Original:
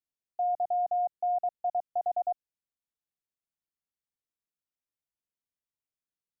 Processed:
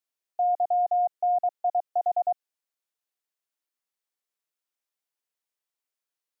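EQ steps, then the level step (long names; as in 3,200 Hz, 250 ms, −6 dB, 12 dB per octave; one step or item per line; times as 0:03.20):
high-pass filter 400 Hz 12 dB per octave
+5.0 dB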